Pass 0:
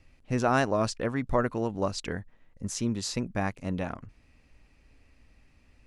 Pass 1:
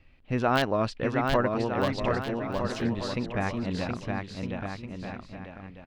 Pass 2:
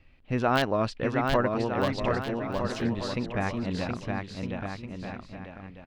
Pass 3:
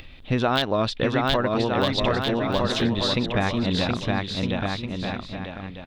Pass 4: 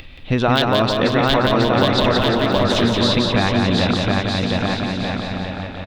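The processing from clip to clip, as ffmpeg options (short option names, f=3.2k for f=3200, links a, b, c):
-af "aeval=exprs='(mod(3.98*val(0)+1,2)-1)/3.98':c=same,highshelf=f=4.9k:t=q:w=1.5:g=-12.5,aecho=1:1:720|1260|1665|1969|2197:0.631|0.398|0.251|0.158|0.1"
-af anull
-af "acompressor=mode=upward:threshold=-44dB:ratio=2.5,equalizer=f=3.6k:w=4.1:g=15,acompressor=threshold=-26dB:ratio=6,volume=8dB"
-af "aecho=1:1:175|350|525|700|875|1050|1225:0.631|0.347|0.191|0.105|0.0577|0.0318|0.0175,volume=4.5dB"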